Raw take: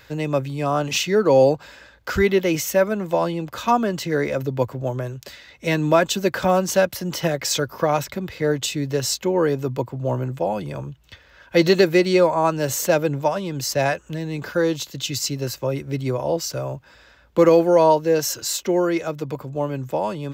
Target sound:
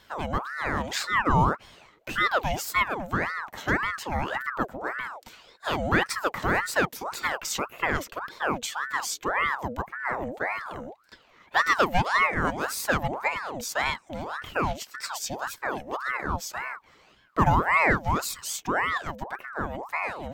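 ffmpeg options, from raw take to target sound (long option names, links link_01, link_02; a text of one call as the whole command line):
ffmpeg -i in.wav -af "bandreject=frequency=4600:width=5.2,aeval=exprs='val(0)*sin(2*PI*1000*n/s+1000*0.65/1.8*sin(2*PI*1.8*n/s))':channel_layout=same,volume=-4dB" out.wav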